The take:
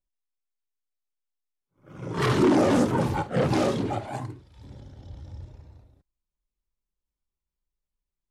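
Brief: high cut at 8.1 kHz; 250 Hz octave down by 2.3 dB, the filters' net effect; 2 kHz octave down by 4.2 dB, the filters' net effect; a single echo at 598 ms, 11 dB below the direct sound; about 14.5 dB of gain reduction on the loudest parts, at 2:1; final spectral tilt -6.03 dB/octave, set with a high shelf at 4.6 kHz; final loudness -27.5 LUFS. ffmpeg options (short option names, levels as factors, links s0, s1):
-af "lowpass=8100,equalizer=f=250:t=o:g=-3,equalizer=f=2000:t=o:g=-7,highshelf=f=4600:g=8.5,acompressor=threshold=0.00501:ratio=2,aecho=1:1:598:0.282,volume=4.47"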